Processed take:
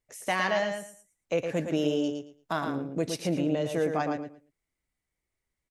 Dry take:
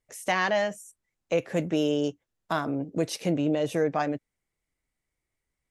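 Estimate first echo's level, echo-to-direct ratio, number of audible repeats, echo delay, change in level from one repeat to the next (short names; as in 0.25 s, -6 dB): -6.0 dB, -6.0 dB, 3, 0.113 s, -14.5 dB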